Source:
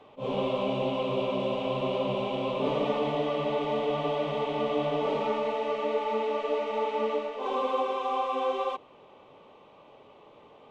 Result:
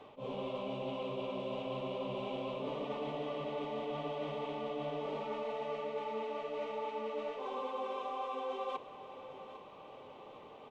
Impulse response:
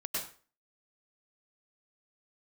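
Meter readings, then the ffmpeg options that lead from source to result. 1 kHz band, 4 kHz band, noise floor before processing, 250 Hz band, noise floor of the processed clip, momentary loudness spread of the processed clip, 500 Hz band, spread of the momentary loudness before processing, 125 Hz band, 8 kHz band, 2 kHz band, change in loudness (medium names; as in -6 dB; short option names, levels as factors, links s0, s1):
-10.0 dB, -10.0 dB, -55 dBFS, -10.0 dB, -53 dBFS, 11 LU, -10.0 dB, 2 LU, -10.0 dB, no reading, -10.0 dB, -10.5 dB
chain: -af "areverse,acompressor=threshold=0.0141:ratio=6,areverse,aecho=1:1:804|1608|2412|3216|4020:0.211|0.108|0.055|0.028|0.0143"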